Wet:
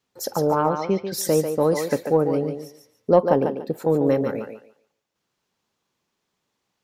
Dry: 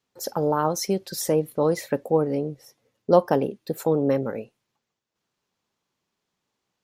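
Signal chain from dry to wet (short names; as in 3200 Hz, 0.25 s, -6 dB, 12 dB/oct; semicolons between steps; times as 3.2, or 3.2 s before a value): 3.11–3.99 high shelf 2600 Hz -11 dB; in parallel at -10.5 dB: soft clip -14 dBFS, distortion -13 dB; 0.53–1.12 on the sum: LPF 3300 Hz 24 dB/oct; thinning echo 0.144 s, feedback 23%, high-pass 280 Hz, level -6 dB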